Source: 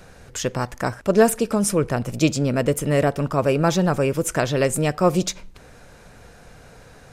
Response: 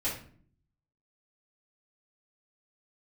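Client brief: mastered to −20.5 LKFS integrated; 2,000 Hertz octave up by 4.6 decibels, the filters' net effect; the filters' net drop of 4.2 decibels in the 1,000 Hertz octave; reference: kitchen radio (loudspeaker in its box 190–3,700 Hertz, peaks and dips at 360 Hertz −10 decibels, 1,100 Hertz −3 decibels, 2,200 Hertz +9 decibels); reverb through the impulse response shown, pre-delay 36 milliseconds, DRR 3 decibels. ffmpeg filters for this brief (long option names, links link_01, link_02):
-filter_complex "[0:a]equalizer=frequency=1000:width_type=o:gain=-6,equalizer=frequency=2000:width_type=o:gain=3.5,asplit=2[link_01][link_02];[1:a]atrim=start_sample=2205,adelay=36[link_03];[link_02][link_03]afir=irnorm=-1:irlink=0,volume=-8.5dB[link_04];[link_01][link_04]amix=inputs=2:normalize=0,highpass=190,equalizer=frequency=360:width_type=q:width=4:gain=-10,equalizer=frequency=1100:width_type=q:width=4:gain=-3,equalizer=frequency=2200:width_type=q:width=4:gain=9,lowpass=frequency=3700:width=0.5412,lowpass=frequency=3700:width=1.3066,volume=1.5dB"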